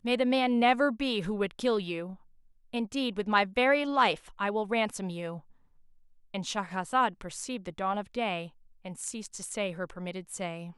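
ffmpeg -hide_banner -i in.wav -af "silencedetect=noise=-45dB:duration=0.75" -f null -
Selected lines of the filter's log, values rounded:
silence_start: 5.40
silence_end: 6.34 | silence_duration: 0.94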